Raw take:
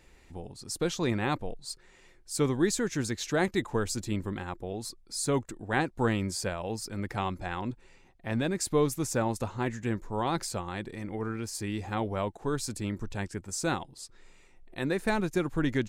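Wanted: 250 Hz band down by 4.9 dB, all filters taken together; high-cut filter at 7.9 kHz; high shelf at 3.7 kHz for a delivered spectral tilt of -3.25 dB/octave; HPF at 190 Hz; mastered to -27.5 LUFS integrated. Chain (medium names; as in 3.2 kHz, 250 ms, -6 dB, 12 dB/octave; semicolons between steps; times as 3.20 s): high-pass 190 Hz; low-pass 7.9 kHz; peaking EQ 250 Hz -5 dB; treble shelf 3.7 kHz +4 dB; trim +6 dB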